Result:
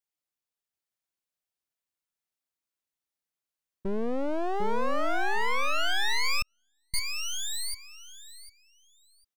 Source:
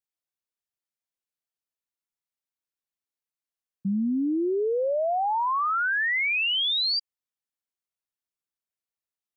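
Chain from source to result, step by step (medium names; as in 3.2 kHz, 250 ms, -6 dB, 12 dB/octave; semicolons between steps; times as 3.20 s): one-sided wavefolder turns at -33 dBFS; feedback delay 750 ms, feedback 18%, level -4.5 dB; 6.42–6.94 s: gate -18 dBFS, range -49 dB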